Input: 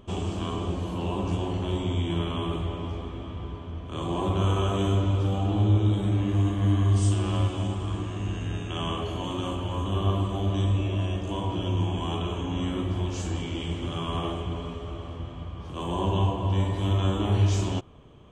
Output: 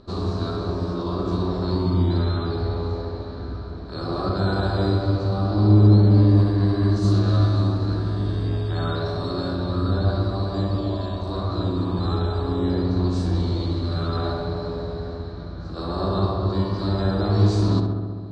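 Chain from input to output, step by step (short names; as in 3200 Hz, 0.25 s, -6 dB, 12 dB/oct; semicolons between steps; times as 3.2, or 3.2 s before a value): resonant high shelf 3000 Hz +8 dB, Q 3; on a send: darkening echo 67 ms, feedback 80%, low-pass 2200 Hz, level -5 dB; on the sum: formant shift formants +4 st; air absorption 210 m; gain +1.5 dB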